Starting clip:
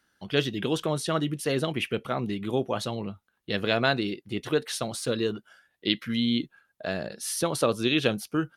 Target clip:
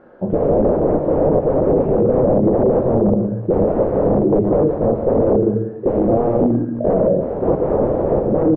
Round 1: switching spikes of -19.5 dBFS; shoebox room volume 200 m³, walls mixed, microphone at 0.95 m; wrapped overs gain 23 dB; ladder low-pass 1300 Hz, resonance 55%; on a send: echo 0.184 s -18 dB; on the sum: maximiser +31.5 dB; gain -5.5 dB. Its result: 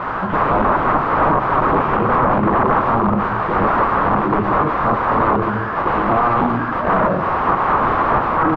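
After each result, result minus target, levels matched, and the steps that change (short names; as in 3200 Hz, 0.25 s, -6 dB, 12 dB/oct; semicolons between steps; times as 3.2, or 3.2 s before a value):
1000 Hz band +12.5 dB; switching spikes: distortion +9 dB
change: ladder low-pass 600 Hz, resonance 55%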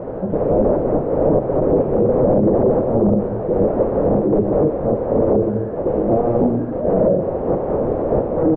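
switching spikes: distortion +9 dB
change: switching spikes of -28.5 dBFS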